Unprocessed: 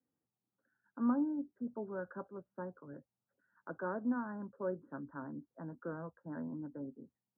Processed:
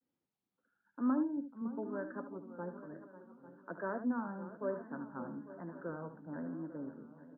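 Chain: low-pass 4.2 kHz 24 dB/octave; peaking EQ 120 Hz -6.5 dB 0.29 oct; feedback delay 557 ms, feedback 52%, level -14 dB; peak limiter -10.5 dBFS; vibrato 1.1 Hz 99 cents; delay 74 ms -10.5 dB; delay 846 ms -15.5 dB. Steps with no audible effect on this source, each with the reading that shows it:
low-pass 4.2 kHz: input has nothing above 1.7 kHz; peak limiter -10.5 dBFS: peak at its input -21.5 dBFS

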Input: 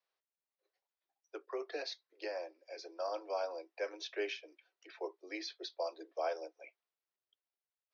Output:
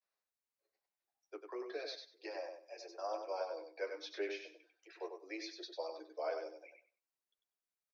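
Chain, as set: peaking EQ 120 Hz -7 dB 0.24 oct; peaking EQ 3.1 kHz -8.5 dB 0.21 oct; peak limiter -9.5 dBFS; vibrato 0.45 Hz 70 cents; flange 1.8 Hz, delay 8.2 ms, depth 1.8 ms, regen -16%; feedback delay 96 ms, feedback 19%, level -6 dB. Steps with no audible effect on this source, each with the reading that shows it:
peaking EQ 120 Hz: input has nothing below 270 Hz; peak limiter -9.5 dBFS: peak at its input -24.0 dBFS

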